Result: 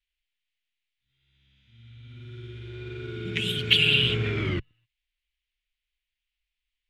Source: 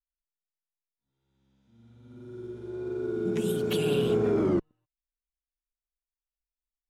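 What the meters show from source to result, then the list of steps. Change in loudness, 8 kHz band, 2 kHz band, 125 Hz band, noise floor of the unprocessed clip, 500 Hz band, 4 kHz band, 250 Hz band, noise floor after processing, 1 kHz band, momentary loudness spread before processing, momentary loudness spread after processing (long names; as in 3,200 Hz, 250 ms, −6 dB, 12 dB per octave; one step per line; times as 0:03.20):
+5.0 dB, −2.0 dB, +16.5 dB, +5.0 dB, below −85 dBFS, −8.0 dB, +18.0 dB, −6.0 dB, below −85 dBFS, −2.5 dB, 16 LU, 22 LU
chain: drawn EQ curve 120 Hz 0 dB, 190 Hz −14 dB, 820 Hz −19 dB, 1,300 Hz −8 dB, 2,100 Hz +9 dB, 3,100 Hz +11 dB, 5,600 Hz −7 dB, 14,000 Hz −15 dB
level +8.5 dB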